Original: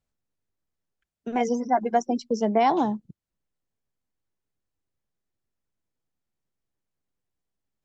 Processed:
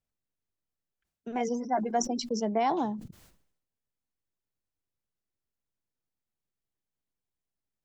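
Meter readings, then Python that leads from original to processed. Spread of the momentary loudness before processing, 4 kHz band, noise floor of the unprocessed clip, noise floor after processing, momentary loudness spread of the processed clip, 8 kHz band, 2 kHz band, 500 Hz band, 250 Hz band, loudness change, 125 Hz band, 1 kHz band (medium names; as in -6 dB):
10 LU, +0.5 dB, -85 dBFS, under -85 dBFS, 10 LU, no reading, -6.0 dB, -6.0 dB, -5.0 dB, -5.5 dB, -4.5 dB, -6.0 dB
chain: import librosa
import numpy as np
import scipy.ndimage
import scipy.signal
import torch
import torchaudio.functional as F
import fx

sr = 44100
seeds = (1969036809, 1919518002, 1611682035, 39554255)

y = fx.sustainer(x, sr, db_per_s=75.0)
y = F.gain(torch.from_numpy(y), -6.5).numpy()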